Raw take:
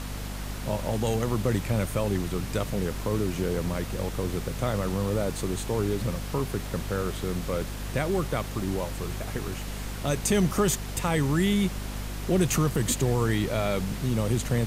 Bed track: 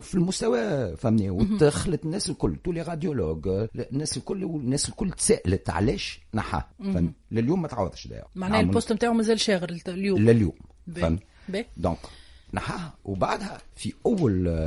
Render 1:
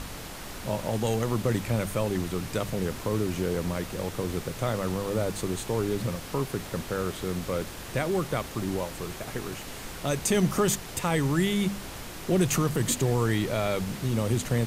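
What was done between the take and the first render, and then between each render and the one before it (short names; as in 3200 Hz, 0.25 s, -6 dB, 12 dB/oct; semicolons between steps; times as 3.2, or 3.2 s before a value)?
de-hum 50 Hz, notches 5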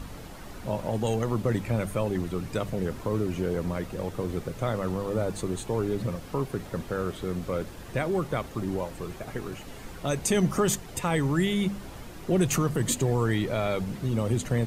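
denoiser 9 dB, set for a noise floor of -40 dBFS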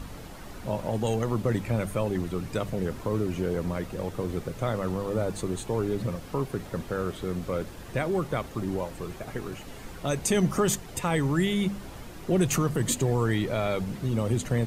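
nothing audible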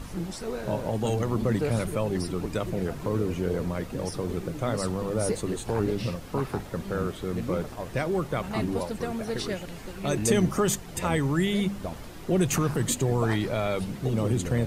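add bed track -10 dB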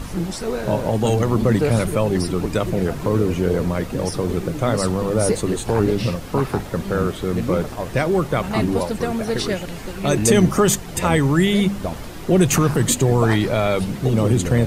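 gain +8.5 dB; limiter -2 dBFS, peak gain reduction 1.5 dB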